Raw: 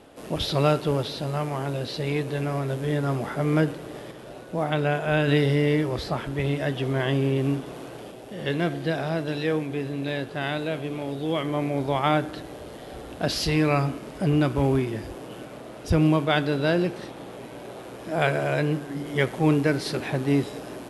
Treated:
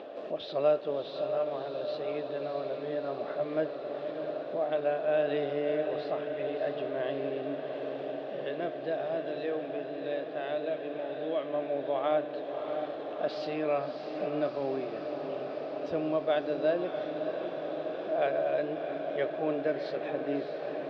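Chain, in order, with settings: bell 2100 Hz -2 dB; upward compressor, threshold -24 dBFS; speaker cabinet 420–3300 Hz, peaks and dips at 610 Hz +8 dB, 920 Hz -9 dB, 1400 Hz -6 dB, 2100 Hz -8 dB, 3000 Hz -6 dB; diffused feedback echo 0.649 s, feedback 74%, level -7.5 dB; gain -6 dB

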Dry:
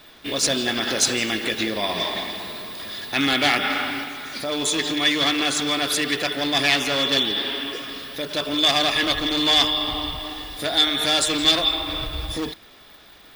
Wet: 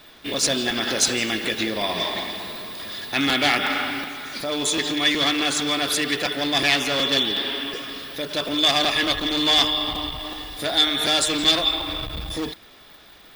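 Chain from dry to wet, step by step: crackling interface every 0.37 s, samples 256, repeat, from 0.33; core saturation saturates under 710 Hz

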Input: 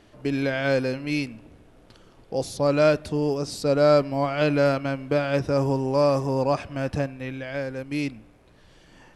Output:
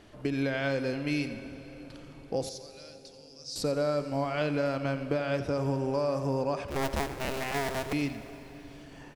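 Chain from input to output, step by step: 6.68–7.93 cycle switcher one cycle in 2, inverted; compressor, threshold -27 dBFS, peak gain reduction 12.5 dB; 2.49–3.56 band-pass 5300 Hz, Q 3.1; echo 88 ms -13.5 dB; reverb RT60 4.2 s, pre-delay 0.11 s, DRR 12.5 dB

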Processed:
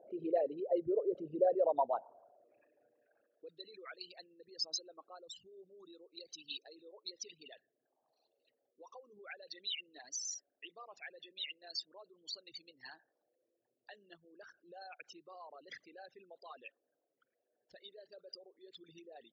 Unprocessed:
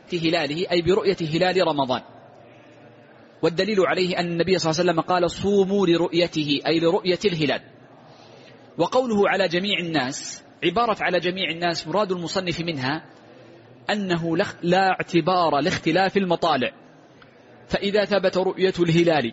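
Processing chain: formant sharpening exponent 3; band-pass sweep 610 Hz -> 5600 Hz, 1.51–4.06; gain -7 dB

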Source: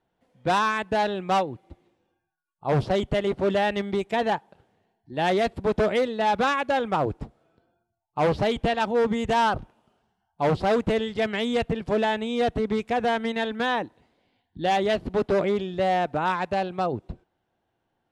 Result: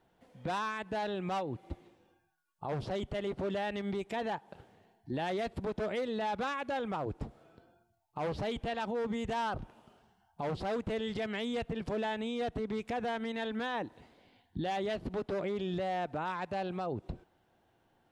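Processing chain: compressor 6:1, threshold -33 dBFS, peak gain reduction 14 dB; limiter -33 dBFS, peak gain reduction 11.5 dB; gain +5 dB

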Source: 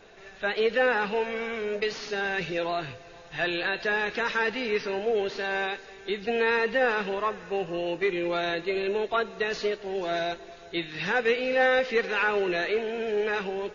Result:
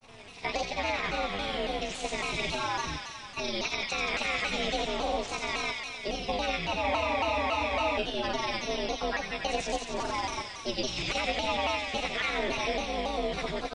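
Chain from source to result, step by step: octaver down 2 oct, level +2 dB; compressor 5:1, threshold -26 dBFS, peak gain reduction 8 dB; pitch shift +6 st; grains, pitch spread up and down by 0 st; ring modulator 110 Hz; thin delay 90 ms, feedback 79%, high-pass 1800 Hz, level -3 dB; spectral freeze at 6.84, 1.13 s; shaped vibrato saw down 3.6 Hz, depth 160 cents; gain +2.5 dB

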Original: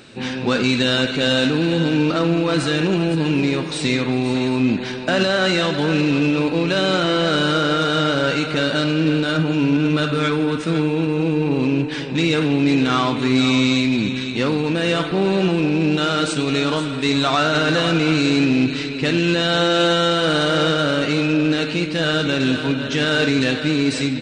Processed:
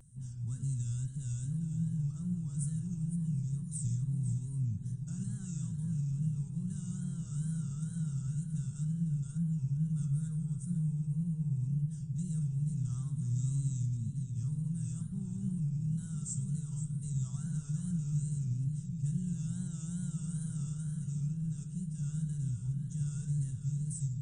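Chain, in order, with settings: inverse Chebyshev band-stop 270–4600 Hz, stop band 40 dB; wow and flutter 110 cents; dark delay 0.996 s, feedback 71%, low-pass 410 Hz, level -8 dB; gain -4 dB

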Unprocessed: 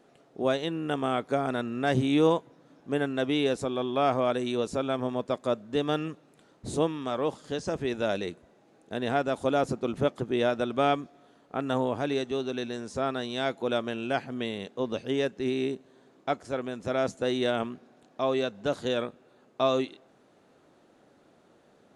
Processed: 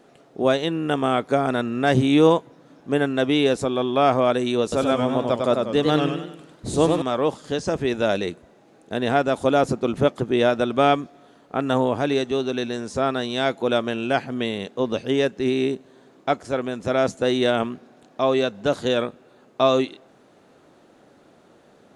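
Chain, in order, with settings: 4.62–7.02 warbling echo 97 ms, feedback 44%, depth 126 cents, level -4 dB; gain +7 dB

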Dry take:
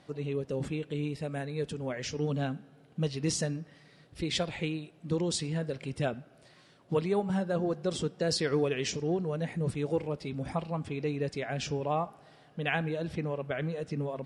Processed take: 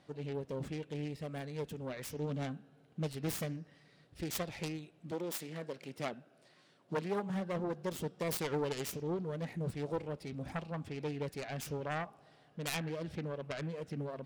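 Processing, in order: self-modulated delay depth 0.5 ms; 5.1–7.34 HPF 290 Hz -> 120 Hz 12 dB/oct; gain -6 dB

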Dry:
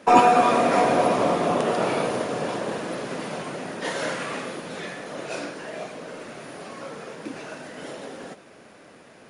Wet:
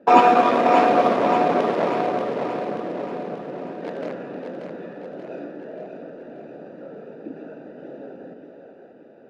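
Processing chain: Wiener smoothing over 41 samples; three-band isolator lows -13 dB, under 190 Hz, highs -19 dB, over 5300 Hz; split-band echo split 340 Hz, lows 0.156 s, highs 0.583 s, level -6 dB; gain +2.5 dB

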